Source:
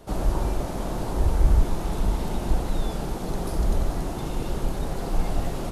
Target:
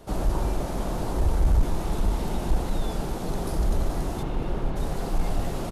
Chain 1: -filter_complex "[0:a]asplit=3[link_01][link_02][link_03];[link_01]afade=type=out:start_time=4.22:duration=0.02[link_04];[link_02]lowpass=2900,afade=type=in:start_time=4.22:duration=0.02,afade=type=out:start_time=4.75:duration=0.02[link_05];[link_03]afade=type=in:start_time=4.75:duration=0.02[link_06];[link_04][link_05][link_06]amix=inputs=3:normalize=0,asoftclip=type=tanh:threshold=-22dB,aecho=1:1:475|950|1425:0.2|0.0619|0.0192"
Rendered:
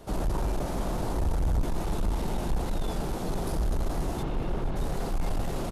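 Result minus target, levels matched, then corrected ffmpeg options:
soft clipping: distortion +10 dB
-filter_complex "[0:a]asplit=3[link_01][link_02][link_03];[link_01]afade=type=out:start_time=4.22:duration=0.02[link_04];[link_02]lowpass=2900,afade=type=in:start_time=4.22:duration=0.02,afade=type=out:start_time=4.75:duration=0.02[link_05];[link_03]afade=type=in:start_time=4.75:duration=0.02[link_06];[link_04][link_05][link_06]amix=inputs=3:normalize=0,asoftclip=type=tanh:threshold=-12dB,aecho=1:1:475|950|1425:0.2|0.0619|0.0192"

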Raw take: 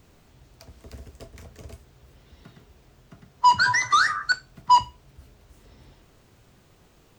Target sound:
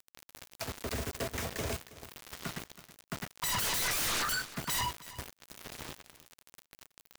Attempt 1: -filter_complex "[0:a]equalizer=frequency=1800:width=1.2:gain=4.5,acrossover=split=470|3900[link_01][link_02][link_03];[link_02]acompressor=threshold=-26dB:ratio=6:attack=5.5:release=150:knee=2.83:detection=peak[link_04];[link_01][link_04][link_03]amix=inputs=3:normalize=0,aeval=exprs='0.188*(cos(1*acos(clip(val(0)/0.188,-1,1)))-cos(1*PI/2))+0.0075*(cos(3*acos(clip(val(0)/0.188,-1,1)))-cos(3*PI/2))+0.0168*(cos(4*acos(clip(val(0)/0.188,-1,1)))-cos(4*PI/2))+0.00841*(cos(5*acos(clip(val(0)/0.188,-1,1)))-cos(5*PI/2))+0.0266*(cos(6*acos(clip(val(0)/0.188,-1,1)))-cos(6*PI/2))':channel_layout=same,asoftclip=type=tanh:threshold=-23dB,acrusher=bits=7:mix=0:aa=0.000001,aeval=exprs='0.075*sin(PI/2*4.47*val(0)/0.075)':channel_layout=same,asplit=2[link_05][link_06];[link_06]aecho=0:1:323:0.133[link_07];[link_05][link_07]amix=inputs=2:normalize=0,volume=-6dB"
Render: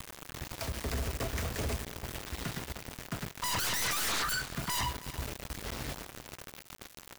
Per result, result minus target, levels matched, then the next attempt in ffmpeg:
soft clipping: distortion +13 dB; 125 Hz band +5.5 dB
-filter_complex "[0:a]equalizer=frequency=1800:width=1.2:gain=4.5,acrossover=split=470|3900[link_01][link_02][link_03];[link_02]acompressor=threshold=-26dB:ratio=6:attack=5.5:release=150:knee=2.83:detection=peak[link_04];[link_01][link_04][link_03]amix=inputs=3:normalize=0,aeval=exprs='0.188*(cos(1*acos(clip(val(0)/0.188,-1,1)))-cos(1*PI/2))+0.0075*(cos(3*acos(clip(val(0)/0.188,-1,1)))-cos(3*PI/2))+0.0168*(cos(4*acos(clip(val(0)/0.188,-1,1)))-cos(4*PI/2))+0.00841*(cos(5*acos(clip(val(0)/0.188,-1,1)))-cos(5*PI/2))+0.0266*(cos(6*acos(clip(val(0)/0.188,-1,1)))-cos(6*PI/2))':channel_layout=same,asoftclip=type=tanh:threshold=-14.5dB,acrusher=bits=7:mix=0:aa=0.000001,aeval=exprs='0.075*sin(PI/2*4.47*val(0)/0.075)':channel_layout=same,asplit=2[link_05][link_06];[link_06]aecho=0:1:323:0.133[link_07];[link_05][link_07]amix=inputs=2:normalize=0,volume=-6dB"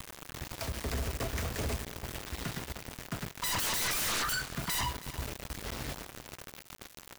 125 Hz band +5.5 dB
-filter_complex "[0:a]highpass=frequency=170:poles=1,equalizer=frequency=1800:width=1.2:gain=4.5,acrossover=split=470|3900[link_01][link_02][link_03];[link_02]acompressor=threshold=-26dB:ratio=6:attack=5.5:release=150:knee=2.83:detection=peak[link_04];[link_01][link_04][link_03]amix=inputs=3:normalize=0,aeval=exprs='0.188*(cos(1*acos(clip(val(0)/0.188,-1,1)))-cos(1*PI/2))+0.0075*(cos(3*acos(clip(val(0)/0.188,-1,1)))-cos(3*PI/2))+0.0168*(cos(4*acos(clip(val(0)/0.188,-1,1)))-cos(4*PI/2))+0.00841*(cos(5*acos(clip(val(0)/0.188,-1,1)))-cos(5*PI/2))+0.0266*(cos(6*acos(clip(val(0)/0.188,-1,1)))-cos(6*PI/2))':channel_layout=same,asoftclip=type=tanh:threshold=-14.5dB,acrusher=bits=7:mix=0:aa=0.000001,aeval=exprs='0.075*sin(PI/2*4.47*val(0)/0.075)':channel_layout=same,asplit=2[link_05][link_06];[link_06]aecho=0:1:323:0.133[link_07];[link_05][link_07]amix=inputs=2:normalize=0,volume=-6dB"

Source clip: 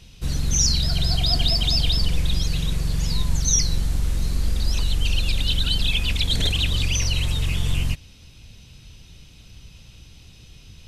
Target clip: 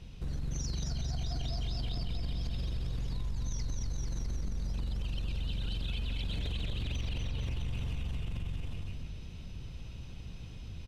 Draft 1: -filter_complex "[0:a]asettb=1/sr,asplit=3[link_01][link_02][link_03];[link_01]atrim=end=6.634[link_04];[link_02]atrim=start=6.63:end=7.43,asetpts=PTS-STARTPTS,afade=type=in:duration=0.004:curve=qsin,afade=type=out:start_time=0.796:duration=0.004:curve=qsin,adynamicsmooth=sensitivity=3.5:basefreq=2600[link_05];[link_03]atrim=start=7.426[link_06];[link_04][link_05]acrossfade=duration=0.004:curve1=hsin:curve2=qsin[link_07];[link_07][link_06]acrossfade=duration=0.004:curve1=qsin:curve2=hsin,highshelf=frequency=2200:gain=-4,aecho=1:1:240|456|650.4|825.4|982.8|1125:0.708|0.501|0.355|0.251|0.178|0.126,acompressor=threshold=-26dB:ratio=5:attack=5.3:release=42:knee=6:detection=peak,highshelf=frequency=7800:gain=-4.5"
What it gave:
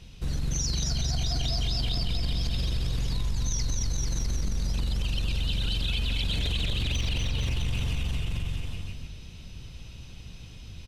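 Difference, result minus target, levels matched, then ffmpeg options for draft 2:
downward compressor: peak gain reduction −6.5 dB; 4,000 Hz band +3.5 dB
-filter_complex "[0:a]asettb=1/sr,asplit=3[link_01][link_02][link_03];[link_01]atrim=end=6.634[link_04];[link_02]atrim=start=6.63:end=7.43,asetpts=PTS-STARTPTS,afade=type=in:duration=0.004:curve=qsin,afade=type=out:start_time=0.796:duration=0.004:curve=qsin,adynamicsmooth=sensitivity=3.5:basefreq=2600[link_05];[link_03]atrim=start=7.426[link_06];[link_04][link_05]acrossfade=duration=0.004:curve1=hsin:curve2=qsin[link_07];[link_07][link_06]acrossfade=duration=0.004:curve1=qsin:curve2=hsin,highshelf=frequency=2200:gain=-12.5,aecho=1:1:240|456|650.4|825.4|982.8|1125:0.708|0.501|0.355|0.251|0.178|0.126,acompressor=threshold=-34.5dB:ratio=5:attack=5.3:release=42:knee=6:detection=peak,highshelf=frequency=7800:gain=-4.5"

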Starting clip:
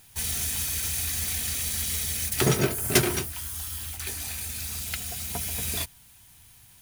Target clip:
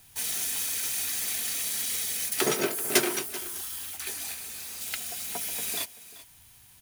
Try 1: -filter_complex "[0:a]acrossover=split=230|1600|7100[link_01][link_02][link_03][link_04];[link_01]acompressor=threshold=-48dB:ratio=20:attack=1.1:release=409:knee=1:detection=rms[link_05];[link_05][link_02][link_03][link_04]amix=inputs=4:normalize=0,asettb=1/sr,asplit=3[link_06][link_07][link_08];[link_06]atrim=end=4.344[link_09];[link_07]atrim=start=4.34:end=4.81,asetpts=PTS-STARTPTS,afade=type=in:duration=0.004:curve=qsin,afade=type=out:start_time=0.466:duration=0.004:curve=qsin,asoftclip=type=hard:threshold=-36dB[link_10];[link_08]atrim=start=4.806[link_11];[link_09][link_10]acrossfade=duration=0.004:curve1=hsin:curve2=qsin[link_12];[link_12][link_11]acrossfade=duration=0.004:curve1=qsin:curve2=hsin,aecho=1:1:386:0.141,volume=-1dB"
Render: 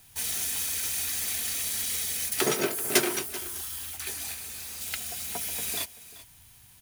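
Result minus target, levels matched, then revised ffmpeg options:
downward compressor: peak gain reduction −8 dB
-filter_complex "[0:a]acrossover=split=230|1600|7100[link_01][link_02][link_03][link_04];[link_01]acompressor=threshold=-56.5dB:ratio=20:attack=1.1:release=409:knee=1:detection=rms[link_05];[link_05][link_02][link_03][link_04]amix=inputs=4:normalize=0,asettb=1/sr,asplit=3[link_06][link_07][link_08];[link_06]atrim=end=4.344[link_09];[link_07]atrim=start=4.34:end=4.81,asetpts=PTS-STARTPTS,afade=type=in:duration=0.004:curve=qsin,afade=type=out:start_time=0.466:duration=0.004:curve=qsin,asoftclip=type=hard:threshold=-36dB[link_10];[link_08]atrim=start=4.806[link_11];[link_09][link_10]acrossfade=duration=0.004:curve1=hsin:curve2=qsin[link_12];[link_12][link_11]acrossfade=duration=0.004:curve1=qsin:curve2=hsin,aecho=1:1:386:0.141,volume=-1dB"

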